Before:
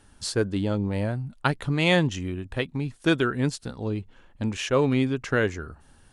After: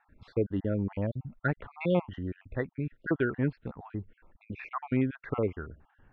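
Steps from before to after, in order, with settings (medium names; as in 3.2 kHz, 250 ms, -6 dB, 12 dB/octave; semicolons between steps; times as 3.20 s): random holes in the spectrogram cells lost 45%; low-pass 2.2 kHz 24 dB/octave; trim -3.5 dB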